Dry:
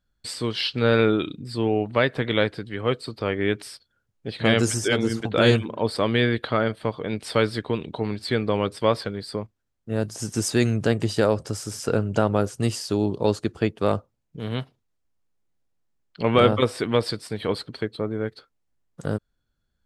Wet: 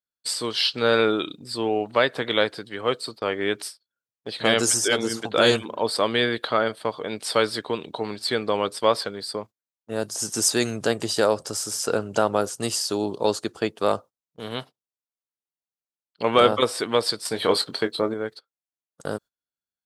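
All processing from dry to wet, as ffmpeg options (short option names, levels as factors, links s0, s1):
-filter_complex "[0:a]asettb=1/sr,asplit=3[s0][s1][s2];[s0]atrim=end=17.254[s3];[s1]atrim=start=17.25:end=18.14,asetpts=PTS-STARTPTS,afade=t=in:d=0.004:c=qsin,afade=t=out:st=0.886:d=0.004:c=qsin,acontrast=26,asplit=2[s4][s5];[s5]adelay=22,volume=0.355[s6];[s4][s6]amix=inputs=2:normalize=0,atrim=end_sample=39249[s7];[s2]atrim=start=18.136[s8];[s3][s7]acrossfade=d=0.004:c1=hsin:c2=qsin[s9];[s9][s8]acrossfade=d=0.004:c1=qsin:c2=hsin,agate=range=0.112:threshold=0.0141:ratio=16:detection=peak,highpass=f=1100:p=1,equalizer=f=2200:w=0.99:g=-8,volume=2.66"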